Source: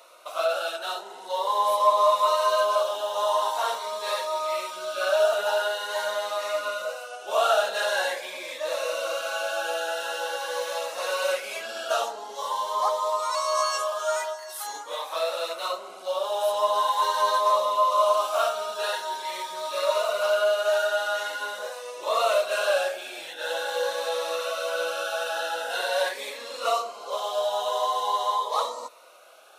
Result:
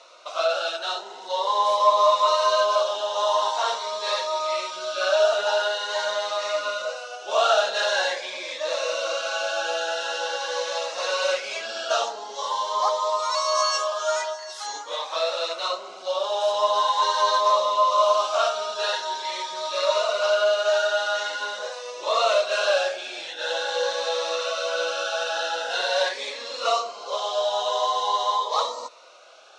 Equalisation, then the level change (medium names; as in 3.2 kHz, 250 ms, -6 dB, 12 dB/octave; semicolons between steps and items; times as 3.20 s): low-pass 6.2 kHz 24 dB/octave; distance through air 51 m; tone controls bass -3 dB, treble +11 dB; +2.0 dB